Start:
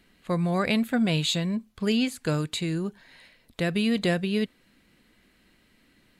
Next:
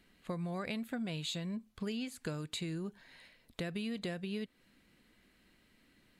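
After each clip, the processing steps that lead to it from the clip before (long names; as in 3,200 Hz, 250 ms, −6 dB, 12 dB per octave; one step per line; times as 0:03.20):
downward compressor 6 to 1, threshold −30 dBFS, peak gain reduction 10.5 dB
level −5.5 dB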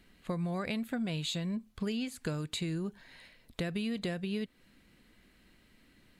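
low-shelf EQ 110 Hz +5.5 dB
level +3 dB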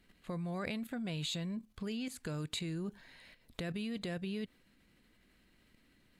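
output level in coarse steps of 10 dB
level +2 dB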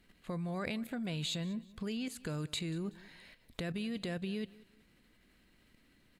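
repeating echo 188 ms, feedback 31%, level −21 dB
level +1 dB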